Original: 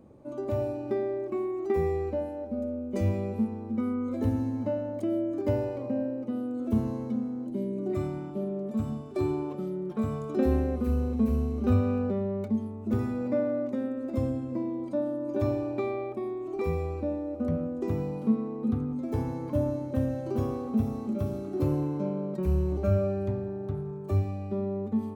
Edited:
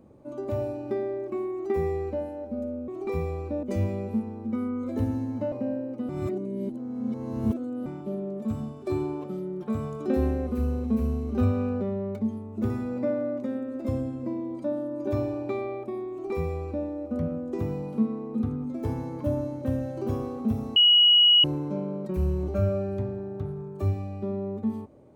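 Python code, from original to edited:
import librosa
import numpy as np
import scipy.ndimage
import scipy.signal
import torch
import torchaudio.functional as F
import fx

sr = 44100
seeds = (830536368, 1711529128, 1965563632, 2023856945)

y = fx.edit(x, sr, fx.cut(start_s=4.77, length_s=1.04),
    fx.reverse_span(start_s=6.38, length_s=1.77),
    fx.duplicate(start_s=16.4, length_s=0.75, to_s=2.88),
    fx.bleep(start_s=21.05, length_s=0.68, hz=2910.0, db=-14.0), tone=tone)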